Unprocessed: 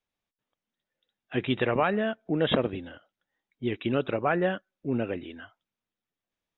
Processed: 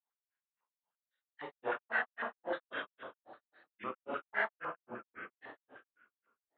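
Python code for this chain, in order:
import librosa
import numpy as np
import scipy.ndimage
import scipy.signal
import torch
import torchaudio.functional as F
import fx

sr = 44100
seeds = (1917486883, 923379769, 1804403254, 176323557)

y = fx.rev_schroeder(x, sr, rt60_s=1.7, comb_ms=31, drr_db=-8.0)
y = fx.granulator(y, sr, seeds[0], grain_ms=170.0, per_s=3.7, spray_ms=100.0, spread_st=3)
y = fx.filter_held_bandpass(y, sr, hz=9.9, low_hz=870.0, high_hz=1800.0)
y = F.gain(torch.from_numpy(y), -1.0).numpy()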